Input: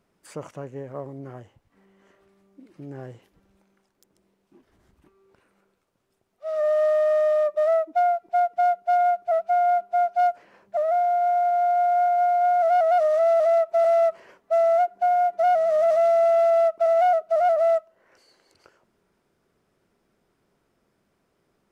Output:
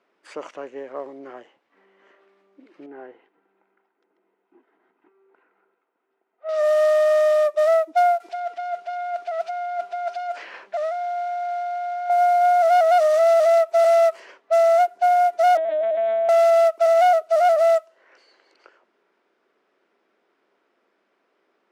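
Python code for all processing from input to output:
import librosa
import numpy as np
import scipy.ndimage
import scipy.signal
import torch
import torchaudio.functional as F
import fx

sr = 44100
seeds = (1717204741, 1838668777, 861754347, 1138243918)

y = fx.chain(x, sr, fx.lowpass(hz=1900.0, slope=12),
    fx.peak_eq(hz=73.0, db=-8.5, octaves=2.6),
    fx.notch_comb(f0_hz=570.0), at=(2.86, 6.49))
y = fx.chain(y, sr, fx.tilt_shelf(db=-4.5, hz=790.0),
    fx.over_compress(threshold_db=-30.0, ratio=-1.0), at=(8.2, 12.1))
y = fx.chain(y, sr, fx.peak_eq(hz=1000.0, db=-10.0, octaves=1.4),
    fx.lpc_vocoder(seeds[0], excitation='pitch_kept', order=8), at=(15.57, 16.29))
y = fx.high_shelf(y, sr, hz=2100.0, db=12.0)
y = fx.env_lowpass(y, sr, base_hz=2200.0, full_db=-18.0)
y = scipy.signal.sosfilt(scipy.signal.butter(4, 290.0, 'highpass', fs=sr, output='sos'), y)
y = y * librosa.db_to_amplitude(2.0)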